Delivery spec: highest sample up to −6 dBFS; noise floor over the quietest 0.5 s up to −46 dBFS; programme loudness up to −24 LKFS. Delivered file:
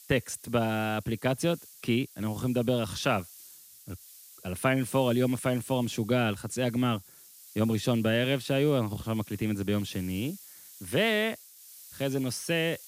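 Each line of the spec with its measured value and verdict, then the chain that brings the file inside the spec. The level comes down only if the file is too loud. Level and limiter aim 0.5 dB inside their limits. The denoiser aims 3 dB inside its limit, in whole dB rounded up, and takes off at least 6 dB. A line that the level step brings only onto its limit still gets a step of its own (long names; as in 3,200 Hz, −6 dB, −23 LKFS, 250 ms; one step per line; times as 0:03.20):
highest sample −13.0 dBFS: in spec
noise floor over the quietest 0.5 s −53 dBFS: in spec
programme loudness −29.0 LKFS: in spec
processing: no processing needed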